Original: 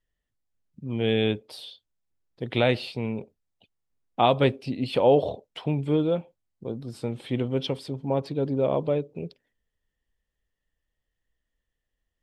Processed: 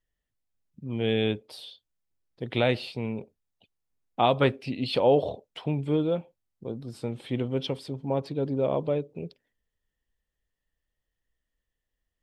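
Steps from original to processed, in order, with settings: 4.4–4.98 bell 1100 Hz -> 4900 Hz +9 dB 0.77 oct; gain -2 dB

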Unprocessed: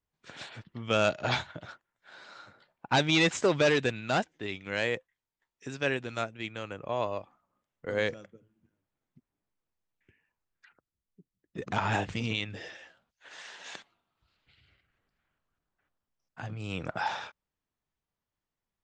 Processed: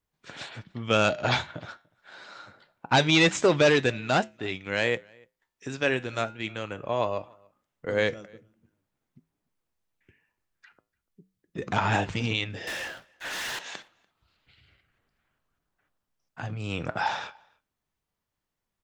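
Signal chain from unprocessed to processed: 12.67–13.59 sample leveller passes 5; flange 0.25 Hz, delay 6.2 ms, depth 4.8 ms, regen -83%; outdoor echo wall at 50 m, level -28 dB; gain +8.5 dB

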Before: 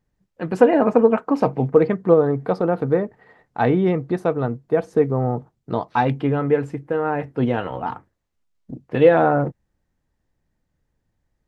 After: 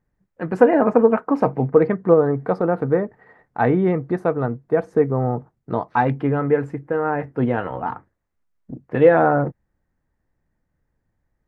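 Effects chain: resonant high shelf 2400 Hz -7 dB, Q 1.5

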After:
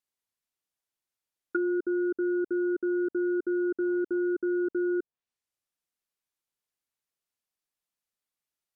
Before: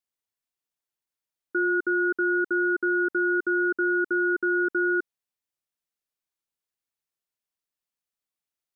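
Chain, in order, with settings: 3.72–4.19 block floating point 5-bit; treble ducked by the level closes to 570 Hz, closed at -24.5 dBFS

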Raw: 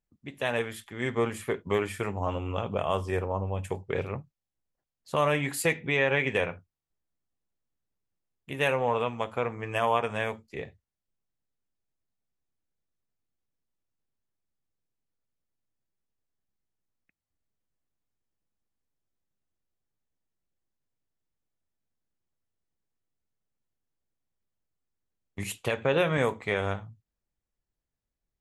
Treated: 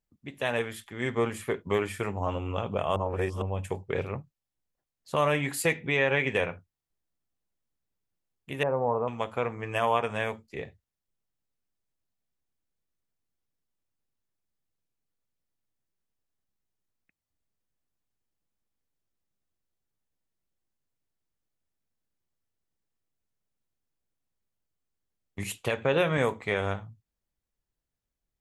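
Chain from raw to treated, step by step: 2.96–3.42 reverse; 8.63–9.08 LPF 1100 Hz 24 dB/oct

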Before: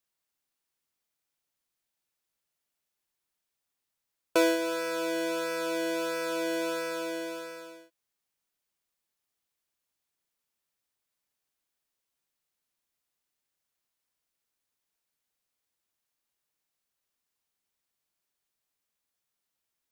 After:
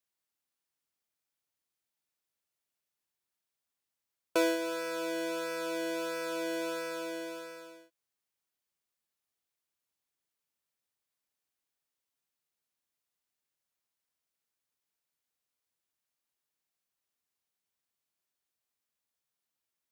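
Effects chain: HPF 48 Hz; gain -4 dB

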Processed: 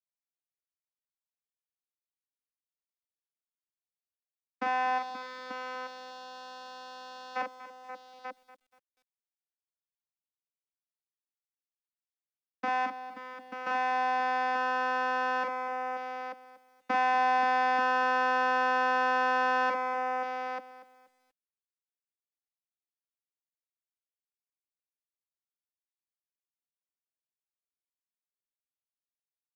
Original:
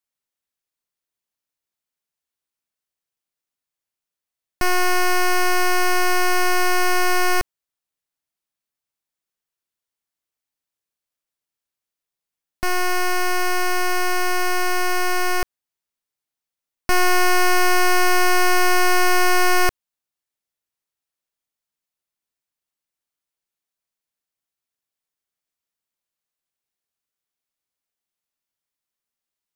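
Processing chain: gate with hold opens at -15 dBFS; 4.97–7.35 spectral gain 210–3800 Hz -24 dB; 12.85–13.66 tilt -3.5 dB/oct; limiter -21.5 dBFS, peak gain reduction 7.5 dB; sample leveller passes 5; bit-crush 8-bit; vocoder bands 16, saw 255 Hz; air absorption 140 m; tapped delay 42/530/887 ms -4.5/-11.5/-7.5 dB; lo-fi delay 0.239 s, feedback 35%, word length 10-bit, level -14.5 dB

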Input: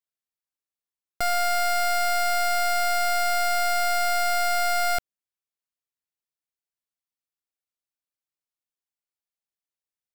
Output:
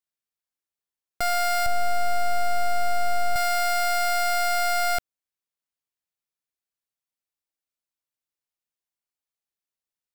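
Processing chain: 1.66–3.36 tilt shelf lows +8 dB, about 680 Hz

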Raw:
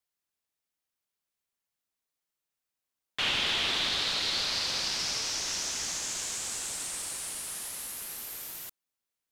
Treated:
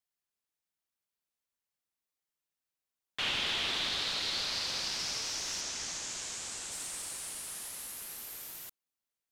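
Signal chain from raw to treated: 5.61–6.72 LPF 8400 Hz 12 dB/oct; gain -4 dB

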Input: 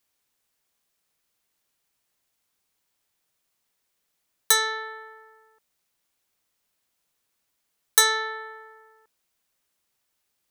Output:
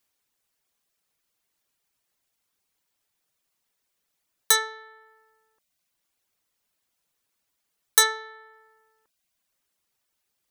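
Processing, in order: reverb removal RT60 0.65 s

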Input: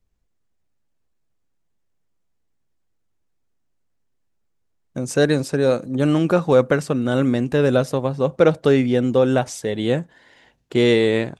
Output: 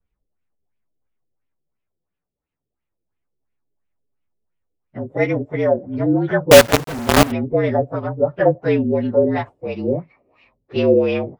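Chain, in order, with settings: inharmonic rescaling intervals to 113%; LFO low-pass sine 2.9 Hz 410–2800 Hz; 6.51–7.32 companded quantiser 2-bit; gain -1 dB

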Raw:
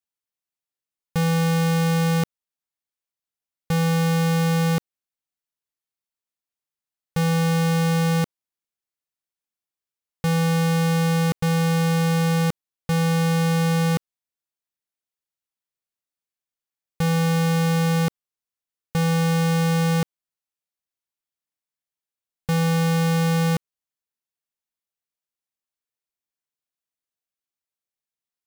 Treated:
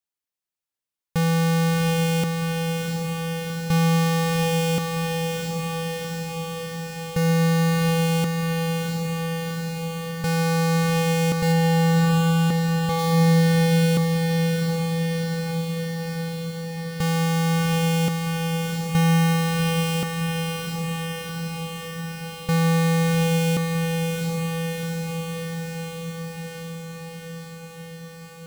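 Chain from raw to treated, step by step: 11.52–12.99 high shelf 4900 Hz -8 dB; diffused feedback echo 0.727 s, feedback 76%, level -4 dB

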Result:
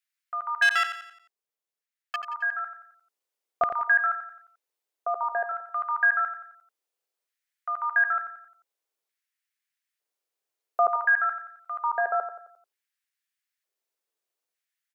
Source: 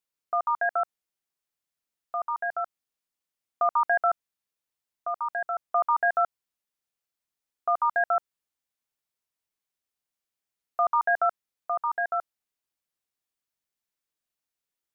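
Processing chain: 0.62–2.16 sample leveller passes 3; LFO high-pass square 0.55 Hz 430–1800 Hz; on a send: feedback echo 88 ms, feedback 44%, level -10 dB

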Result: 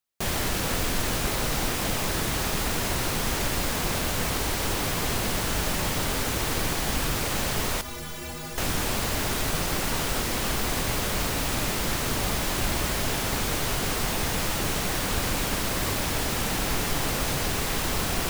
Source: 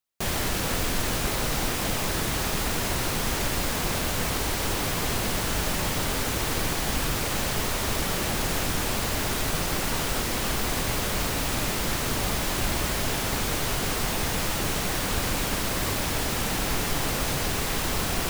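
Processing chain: 7.81–8.58 metallic resonator 73 Hz, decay 0.4 s, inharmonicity 0.03

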